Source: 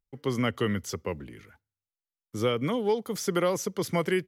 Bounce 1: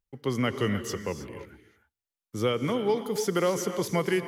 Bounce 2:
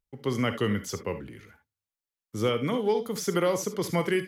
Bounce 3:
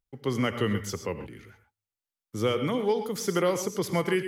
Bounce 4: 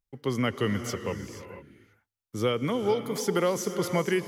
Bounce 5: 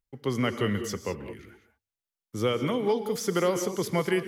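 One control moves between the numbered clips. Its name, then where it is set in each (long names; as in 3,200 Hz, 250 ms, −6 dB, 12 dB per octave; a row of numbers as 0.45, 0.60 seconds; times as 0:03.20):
reverb whose tail is shaped and stops, gate: 340, 90, 150, 510, 230 milliseconds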